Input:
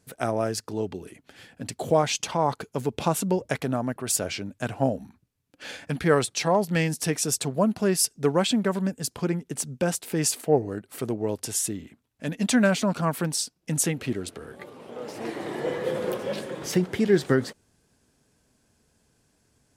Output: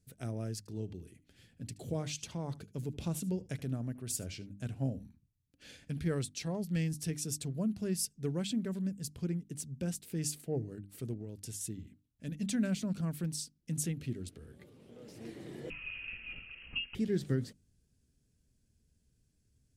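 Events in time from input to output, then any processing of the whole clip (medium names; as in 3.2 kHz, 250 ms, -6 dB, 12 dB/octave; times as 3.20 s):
0.58–6.11 s: delay 75 ms -19.5 dB
11.13–11.61 s: compression, threshold -27 dBFS
15.70–16.95 s: frequency inversion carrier 3 kHz
whole clip: amplifier tone stack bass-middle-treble 10-0-1; hum notches 50/100/150/200/250/300 Hz; trim +8.5 dB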